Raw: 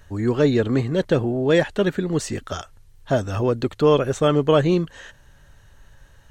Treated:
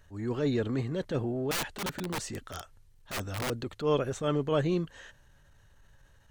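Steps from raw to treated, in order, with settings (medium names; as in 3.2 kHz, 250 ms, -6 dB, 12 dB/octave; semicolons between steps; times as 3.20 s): 1.51–3.50 s: integer overflow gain 17 dB; transient shaper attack -8 dB, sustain +1 dB; trim -9 dB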